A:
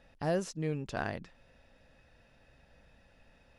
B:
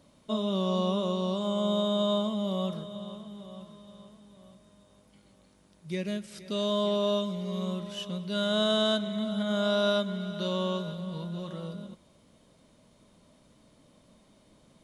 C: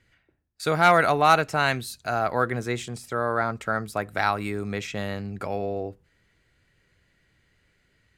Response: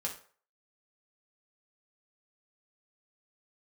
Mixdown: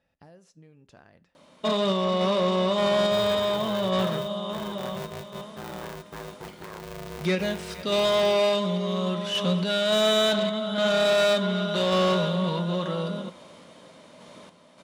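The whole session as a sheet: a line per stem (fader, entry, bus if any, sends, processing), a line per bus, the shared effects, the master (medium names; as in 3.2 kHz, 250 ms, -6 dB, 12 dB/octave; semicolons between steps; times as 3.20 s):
-13.0 dB, 0.00 s, send -12 dB, compression 12:1, threshold -37 dBFS, peak gain reduction 12 dB
+1.0 dB, 1.35 s, send -9 dB, random-step tremolo, depth 70%; overdrive pedal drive 24 dB, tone 2.6 kHz, clips at -16.5 dBFS
-17.0 dB, 2.45 s, no send, tilt EQ -4 dB/octave; peak limiter -11.5 dBFS, peak gain reduction 6 dB; polarity switched at an audio rate 270 Hz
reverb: on, RT60 0.45 s, pre-delay 3 ms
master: high-pass 62 Hz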